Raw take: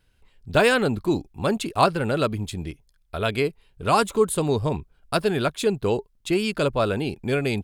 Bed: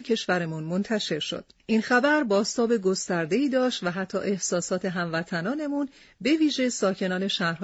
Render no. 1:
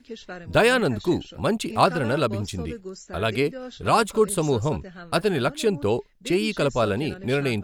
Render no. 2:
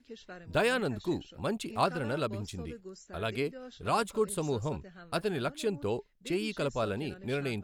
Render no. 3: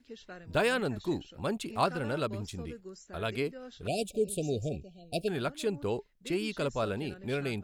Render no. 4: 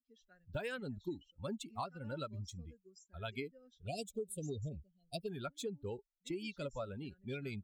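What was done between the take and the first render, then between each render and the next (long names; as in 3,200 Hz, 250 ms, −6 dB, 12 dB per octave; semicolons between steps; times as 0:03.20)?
mix in bed −13 dB
level −9.5 dB
0:03.87–0:05.28: linear-phase brick-wall band-stop 760–2,300 Hz
spectral dynamics exaggerated over time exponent 2; downward compressor 12 to 1, threshold −37 dBFS, peak gain reduction 14 dB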